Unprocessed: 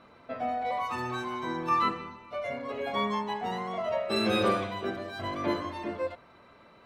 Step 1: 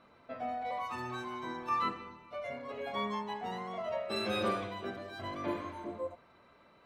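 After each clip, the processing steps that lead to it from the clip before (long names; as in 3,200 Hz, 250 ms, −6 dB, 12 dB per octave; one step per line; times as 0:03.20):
hum removal 54.95 Hz, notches 9
healed spectral selection 0:05.51–0:06.14, 1,300–6,100 Hz both
level −6 dB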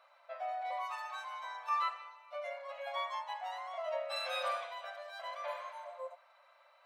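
linear-phase brick-wall high-pass 520 Hz
level −1 dB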